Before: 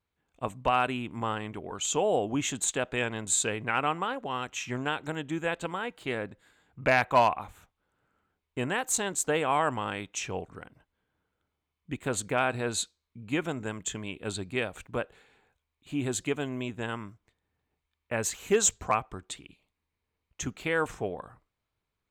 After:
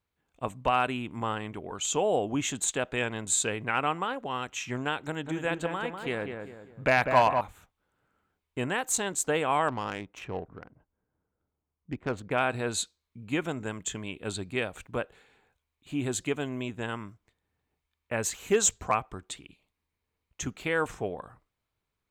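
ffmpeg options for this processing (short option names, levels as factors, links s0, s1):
-filter_complex "[0:a]asettb=1/sr,asplit=3[s0][s1][s2];[s0]atrim=end=5.034[s3];[s1]atrim=start=5.03:end=7.41,asetpts=PTS-STARTPTS,afade=t=in:d=0.004:c=qsin,afade=t=out:st=2.376:d=0.004:c=qsin,asplit=2[s4][s5];[s5]adelay=197,lowpass=f=1800:p=1,volume=0.531,asplit=2[s6][s7];[s7]adelay=197,lowpass=f=1800:p=1,volume=0.4,asplit=2[s8][s9];[s9]adelay=197,lowpass=f=1800:p=1,volume=0.4,asplit=2[s10][s11];[s11]adelay=197,lowpass=f=1800:p=1,volume=0.4,asplit=2[s12][s13];[s13]adelay=197,lowpass=f=1800:p=1,volume=0.4[s14];[s4][s6][s8][s10][s12][s14]amix=inputs=6:normalize=0,atrim=end_sample=104958[s15];[s2]atrim=start=7.406[s16];[s3][s15]acrossfade=d=0.004:c1=hsin:c2=qsin[s17];[s17][s16]acrossfade=d=0.004:c1=qsin:c2=hsin,asettb=1/sr,asplit=3[s18][s19][s20];[s18]atrim=end=9.684[s21];[s19]atrim=start=9.68:end=12.31,asetpts=PTS-STARTPTS,afade=t=in:d=0.004:c=qsin,afade=t=out:st=2.626:d=0.004:c=qsin,adynamicsmooth=sensitivity=3:basefreq=1200[s22];[s20]atrim=start=12.306[s23];[s21][s22]acrossfade=d=0.004:c1=hsin:c2=qsin[s24];[s24][s23]acrossfade=d=0.004:c1=qsin:c2=hsin"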